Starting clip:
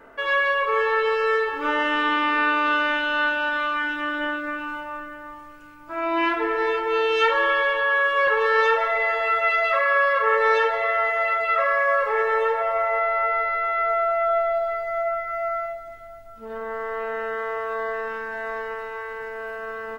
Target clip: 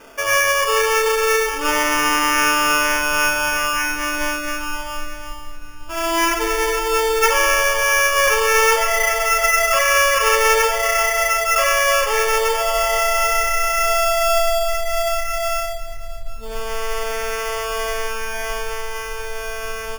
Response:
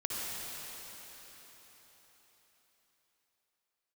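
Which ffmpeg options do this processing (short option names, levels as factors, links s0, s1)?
-af "asubboost=boost=10.5:cutoff=65,acrusher=samples=11:mix=1:aa=0.000001,volume=1.68"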